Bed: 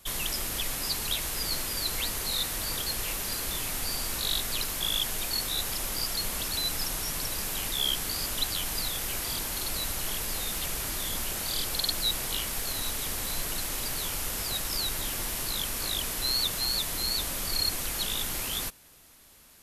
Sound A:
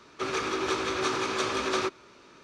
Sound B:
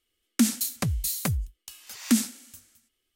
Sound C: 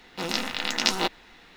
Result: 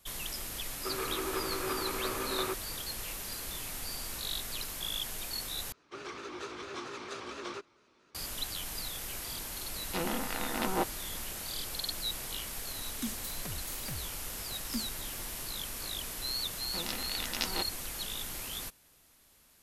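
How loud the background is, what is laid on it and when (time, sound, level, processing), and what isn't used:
bed −7.5 dB
0:00.65: mix in A −6 dB + Bessel low-pass filter 2,200 Hz
0:05.72: overwrite with A −13 dB + pitch modulation by a square or saw wave square 4.4 Hz, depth 100 cents
0:09.76: mix in C −2 dB + treble cut that deepens with the level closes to 1,300 Hz, closed at −26 dBFS
0:12.63: mix in B −16.5 dB
0:16.55: mix in C −11 dB

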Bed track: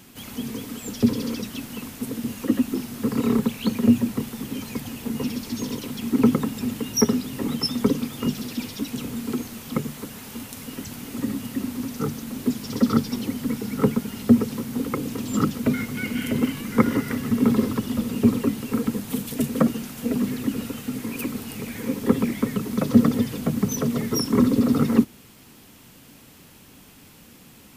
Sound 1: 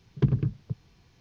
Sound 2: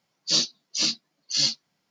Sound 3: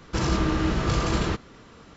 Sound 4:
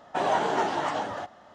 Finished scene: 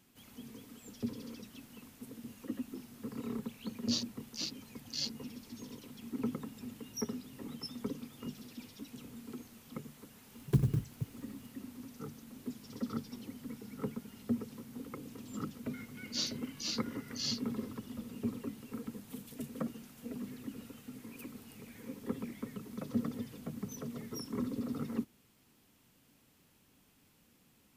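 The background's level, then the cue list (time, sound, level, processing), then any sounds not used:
bed track −18.5 dB
0:03.59: mix in 2 −13 dB + adaptive Wiener filter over 41 samples
0:10.31: mix in 1 −5 dB + converter with an unsteady clock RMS 0.034 ms
0:15.85: mix in 2 −14 dB
not used: 3, 4

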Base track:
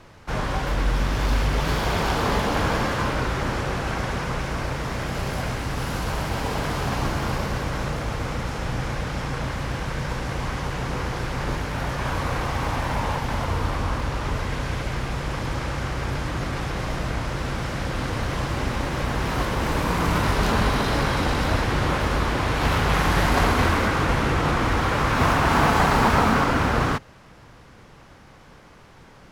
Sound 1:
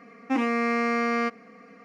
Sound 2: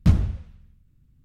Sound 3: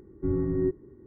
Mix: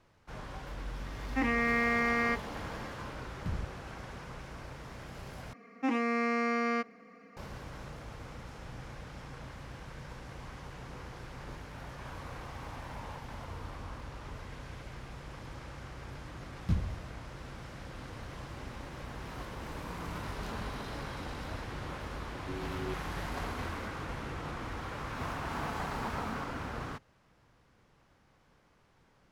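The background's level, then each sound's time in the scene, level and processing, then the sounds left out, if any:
base track −18 dB
0:01.06: mix in 1 −6.5 dB + parametric band 1,900 Hz +10.5 dB 0.36 octaves
0:03.40: mix in 2 −10.5 dB + output level in coarse steps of 23 dB
0:05.53: overwrite with 1 −5.5 dB
0:16.63: mix in 2 −13 dB
0:22.24: mix in 3 −14 dB

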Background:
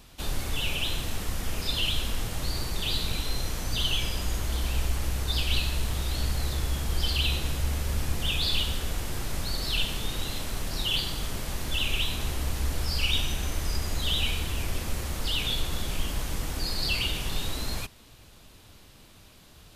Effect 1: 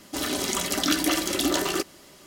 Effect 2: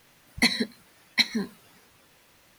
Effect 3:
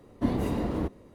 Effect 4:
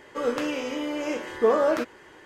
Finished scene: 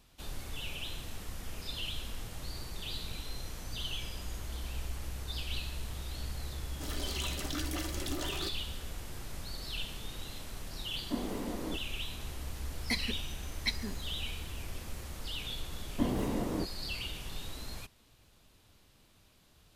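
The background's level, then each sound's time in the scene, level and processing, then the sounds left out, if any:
background −11 dB
0:06.67: mix in 1 −13.5 dB + soft clipping −14 dBFS
0:10.89: mix in 3 −8 dB + high-pass filter 190 Hz 24 dB per octave
0:12.48: mix in 2 −11.5 dB
0:15.77: mix in 3 −4 dB + parametric band 61 Hz −7.5 dB 1.2 octaves
not used: 4

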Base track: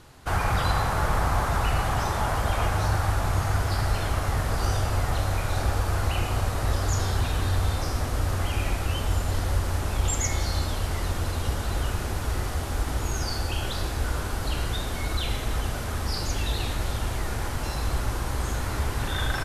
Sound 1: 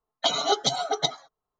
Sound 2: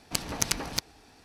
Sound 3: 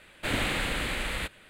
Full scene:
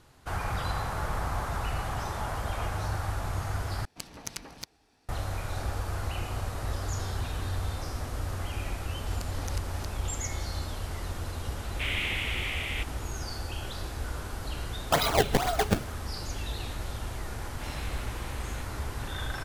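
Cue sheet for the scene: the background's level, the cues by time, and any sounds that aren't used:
base track −7.5 dB
0:03.85: overwrite with 2 −11 dB
0:09.06: mix in 2 −17 dB + background raised ahead of every attack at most 47 dB per second
0:11.56: mix in 3 −12 dB + flat-topped bell 2,600 Hz +14 dB 1 octave
0:14.68: mix in 1 + sample-and-hold swept by an LFO 25×, swing 160% 2.1 Hz
0:17.36: mix in 3 −14.5 dB

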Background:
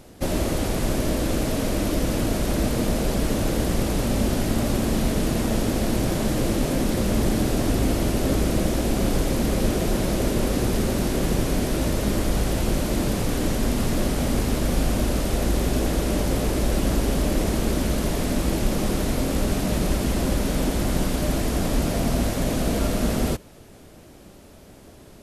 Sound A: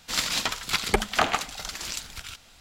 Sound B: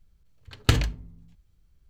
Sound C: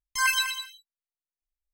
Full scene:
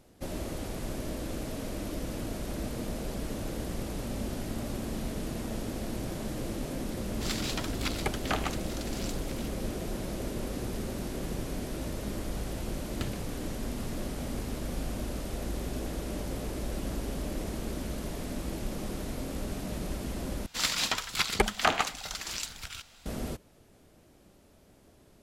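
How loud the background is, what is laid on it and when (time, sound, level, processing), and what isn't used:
background −12.5 dB
0:07.12: mix in A −9.5 dB
0:12.32: mix in B −17 dB
0:20.46: overwrite with A −2.5 dB
not used: C

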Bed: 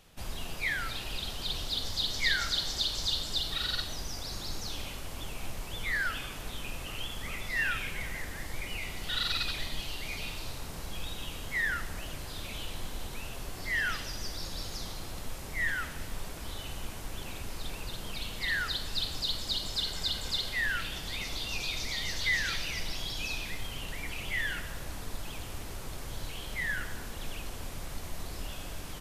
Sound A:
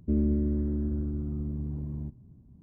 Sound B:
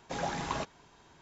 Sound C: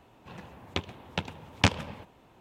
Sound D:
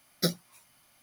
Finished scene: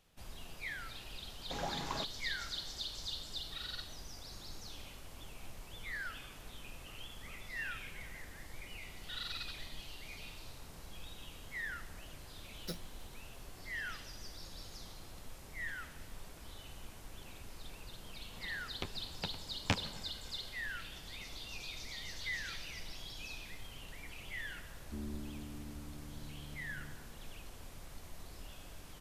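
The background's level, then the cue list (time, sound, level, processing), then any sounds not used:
bed −11 dB
0:01.40: mix in B −6 dB
0:12.45: mix in D −16 dB
0:18.06: mix in C −10.5 dB
0:24.84: mix in A −17.5 dB + single-tap delay 265 ms −9.5 dB

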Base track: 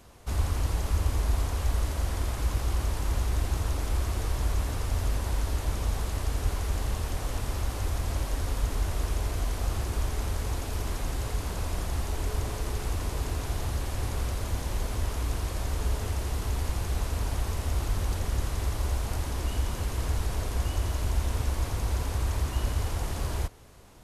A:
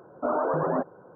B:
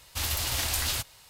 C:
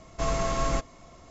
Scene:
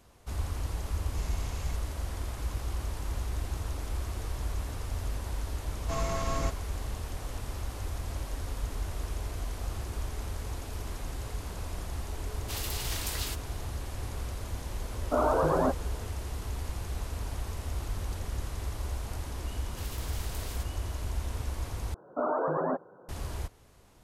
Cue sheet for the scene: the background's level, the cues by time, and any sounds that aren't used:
base track −6 dB
0:00.96: mix in C −11 dB + elliptic band-stop filter 170–2,200 Hz
0:05.70: mix in C −5 dB
0:12.33: mix in B −7 dB
0:14.89: mix in A
0:19.61: mix in B −17 dB + ceiling on every frequency bin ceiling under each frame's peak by 15 dB
0:21.94: overwrite with A −3 dB + low-shelf EQ 140 Hz −5.5 dB

